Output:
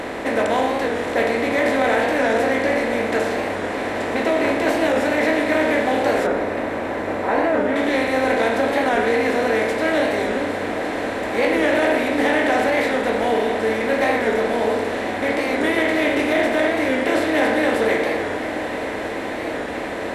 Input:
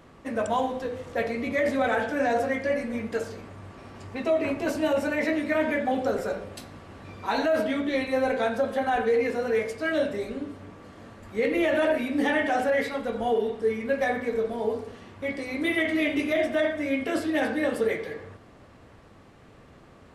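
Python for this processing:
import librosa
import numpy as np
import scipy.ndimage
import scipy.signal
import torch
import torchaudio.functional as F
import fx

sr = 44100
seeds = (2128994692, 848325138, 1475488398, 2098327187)

y = fx.bin_compress(x, sr, power=0.4)
y = fx.lowpass(y, sr, hz=1700.0, slope=12, at=(6.27, 7.76))
y = fx.echo_diffused(y, sr, ms=1082, feedback_pct=75, wet_db=-13)
y = fx.record_warp(y, sr, rpm=45.0, depth_cents=100.0)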